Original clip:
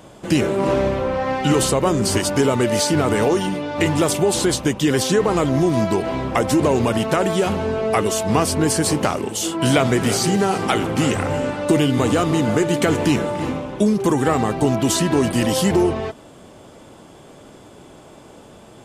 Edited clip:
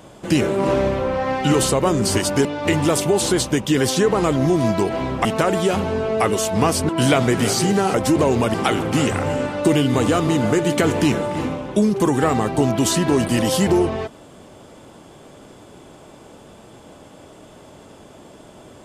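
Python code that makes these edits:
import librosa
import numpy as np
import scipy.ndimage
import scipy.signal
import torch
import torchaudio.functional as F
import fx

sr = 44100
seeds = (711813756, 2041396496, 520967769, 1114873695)

y = fx.edit(x, sr, fx.cut(start_s=2.45, length_s=1.13),
    fx.move(start_s=6.38, length_s=0.6, to_s=10.58),
    fx.cut(start_s=8.62, length_s=0.91), tone=tone)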